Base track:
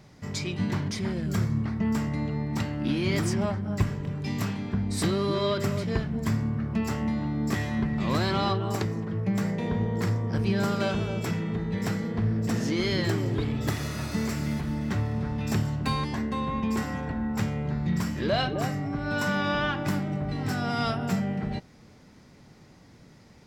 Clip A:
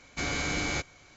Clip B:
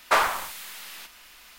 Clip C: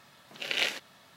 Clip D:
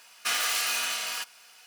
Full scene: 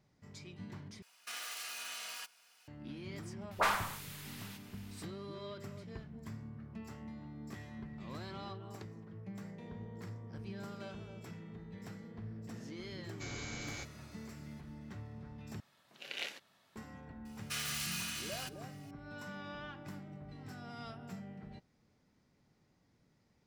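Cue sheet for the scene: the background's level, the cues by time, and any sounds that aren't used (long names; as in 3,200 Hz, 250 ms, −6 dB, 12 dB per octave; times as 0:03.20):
base track −19.5 dB
0:01.02: overwrite with D −12 dB + brickwall limiter −22 dBFS
0:03.47: mix in B −10 dB + all-pass dispersion highs, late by 43 ms, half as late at 1,000 Hz
0:13.03: mix in A −15.5 dB + high-shelf EQ 3,900 Hz +5.5 dB
0:15.60: overwrite with C −12.5 dB
0:17.25: mix in D −10.5 dB + high-pass filter 1,500 Hz 6 dB per octave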